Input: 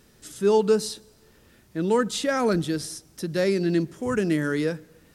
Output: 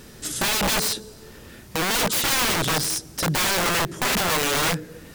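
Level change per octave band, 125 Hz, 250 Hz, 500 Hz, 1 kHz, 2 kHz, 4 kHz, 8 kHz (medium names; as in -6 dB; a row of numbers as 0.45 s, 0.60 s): +0.5 dB, -5.0 dB, -6.0 dB, +6.5 dB, +9.0 dB, +12.5 dB, +13.0 dB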